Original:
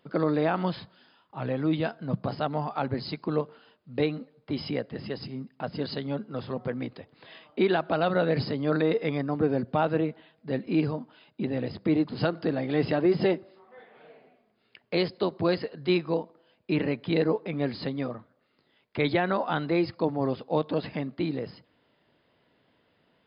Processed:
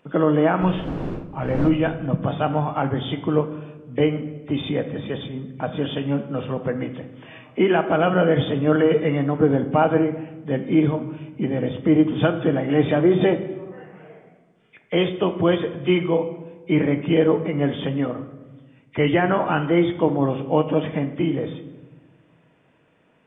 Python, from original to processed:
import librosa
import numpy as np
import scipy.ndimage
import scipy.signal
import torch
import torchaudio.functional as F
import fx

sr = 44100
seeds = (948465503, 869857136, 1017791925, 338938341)

y = fx.freq_compress(x, sr, knee_hz=1800.0, ratio=1.5)
y = fx.dmg_wind(y, sr, seeds[0], corner_hz=340.0, level_db=-32.0, at=(0.61, 1.68), fade=0.02)
y = fx.room_shoebox(y, sr, seeds[1], volume_m3=730.0, walls='mixed', distance_m=0.56)
y = F.gain(torch.from_numpy(y), 6.0).numpy()